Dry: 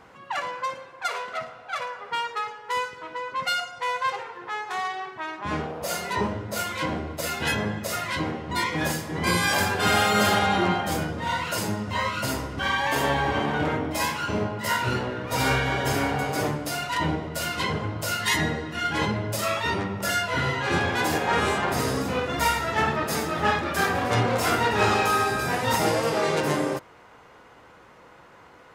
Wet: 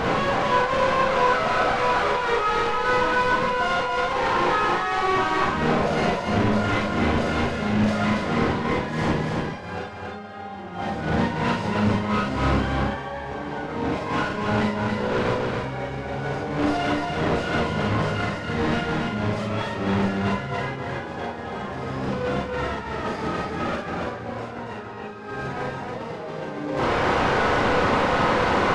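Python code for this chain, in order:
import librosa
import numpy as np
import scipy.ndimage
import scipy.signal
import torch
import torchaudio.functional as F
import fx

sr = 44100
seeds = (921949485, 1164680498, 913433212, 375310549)

p1 = fx.delta_mod(x, sr, bps=64000, step_db=-24.0)
p2 = fx.over_compress(p1, sr, threshold_db=-30.0, ratio=-0.5)
p3 = fx.spacing_loss(p2, sr, db_at_10k=30)
p4 = p3 + fx.echo_single(p3, sr, ms=280, db=-3.5, dry=0)
p5 = fx.rev_schroeder(p4, sr, rt60_s=0.3, comb_ms=30, drr_db=-0.5)
y = p5 * librosa.db_to_amplitude(4.0)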